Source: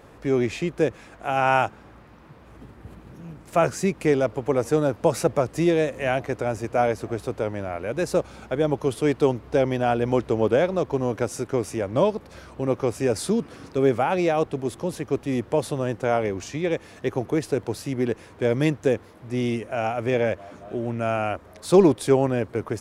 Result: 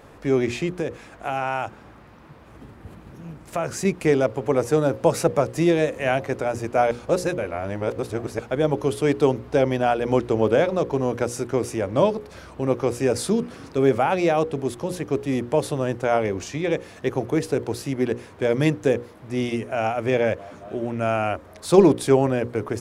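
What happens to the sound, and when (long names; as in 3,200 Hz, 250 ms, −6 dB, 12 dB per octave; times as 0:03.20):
0:00.78–0:03.85: downward compressor 4 to 1, threshold −23 dBFS
0:06.91–0:08.39: reverse
whole clip: mains-hum notches 60/120/180/240/300/360/420/480/540 Hz; level +2 dB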